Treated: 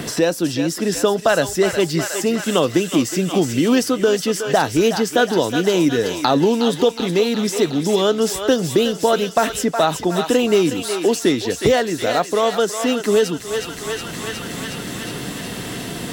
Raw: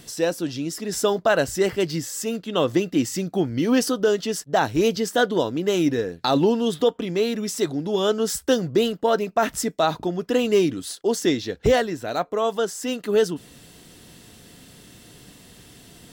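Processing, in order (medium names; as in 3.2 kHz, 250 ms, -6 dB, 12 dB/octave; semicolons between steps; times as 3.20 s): thinning echo 365 ms, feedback 74%, high-pass 870 Hz, level -8 dB; three bands compressed up and down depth 70%; trim +4 dB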